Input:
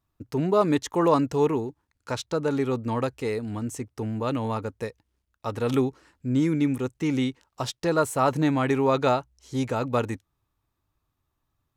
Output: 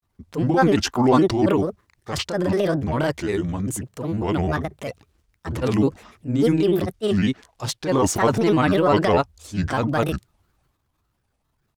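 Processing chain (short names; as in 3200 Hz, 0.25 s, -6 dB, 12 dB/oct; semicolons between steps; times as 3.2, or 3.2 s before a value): transient shaper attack -8 dB, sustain +6 dB; grains, spray 26 ms, pitch spread up and down by 7 st; gain +6.5 dB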